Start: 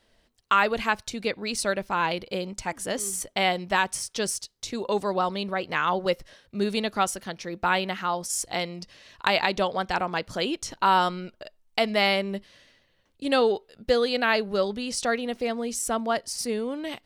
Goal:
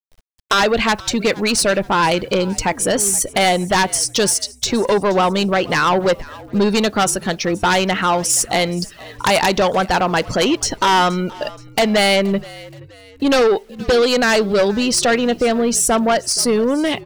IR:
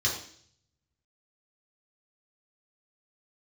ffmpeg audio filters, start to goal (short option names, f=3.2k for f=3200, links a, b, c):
-filter_complex "[0:a]afftdn=nr=20:nf=-45,asplit=2[a][b];[b]acompressor=threshold=-36dB:ratio=6,volume=3dB[c];[a][c]amix=inputs=2:normalize=0,aeval=exprs='0.75*sin(PI/2*4.47*val(0)/0.75)':c=same,acrusher=bits=7:mix=0:aa=0.000001,asoftclip=type=tanh:threshold=-3.5dB,asplit=4[d][e][f][g];[e]adelay=474,afreqshift=-57,volume=-21dB[h];[f]adelay=948,afreqshift=-114,volume=-28.5dB[i];[g]adelay=1422,afreqshift=-171,volume=-36.1dB[j];[d][h][i][j]amix=inputs=4:normalize=0,volume=-5dB"